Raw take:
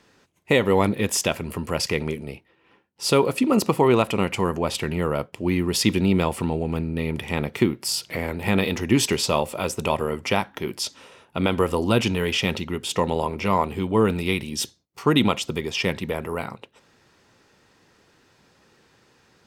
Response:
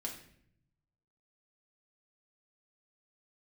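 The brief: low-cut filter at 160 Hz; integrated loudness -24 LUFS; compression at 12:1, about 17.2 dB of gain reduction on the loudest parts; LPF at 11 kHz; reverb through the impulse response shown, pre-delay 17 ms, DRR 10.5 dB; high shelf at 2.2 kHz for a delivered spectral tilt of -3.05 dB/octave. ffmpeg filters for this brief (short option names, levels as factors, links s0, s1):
-filter_complex "[0:a]highpass=160,lowpass=11000,highshelf=f=2200:g=8.5,acompressor=threshold=0.0316:ratio=12,asplit=2[s0][s1];[1:a]atrim=start_sample=2205,adelay=17[s2];[s1][s2]afir=irnorm=-1:irlink=0,volume=0.335[s3];[s0][s3]amix=inputs=2:normalize=0,volume=3.16"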